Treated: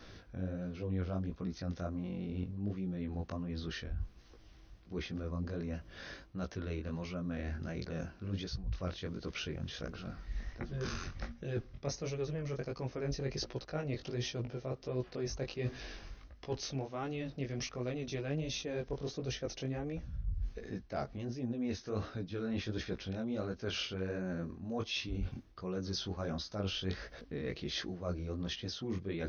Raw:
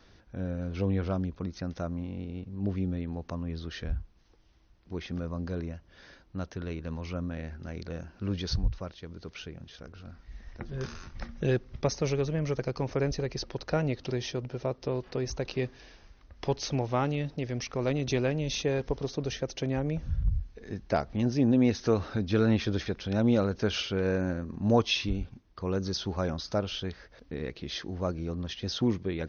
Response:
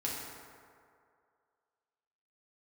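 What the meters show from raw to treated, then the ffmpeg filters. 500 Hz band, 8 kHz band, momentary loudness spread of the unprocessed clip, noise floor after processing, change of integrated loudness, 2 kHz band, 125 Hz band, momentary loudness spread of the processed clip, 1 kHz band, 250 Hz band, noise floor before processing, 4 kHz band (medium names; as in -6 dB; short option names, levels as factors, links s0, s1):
-8.5 dB, no reading, 15 LU, -57 dBFS, -8.0 dB, -6.0 dB, -7.0 dB, 6 LU, -9.5 dB, -8.5 dB, -59 dBFS, -5.0 dB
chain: -af "areverse,acompressor=threshold=0.01:ratio=12,areverse,flanger=delay=16:depth=6.5:speed=1.4,bandreject=f=900:w=10,volume=2.66"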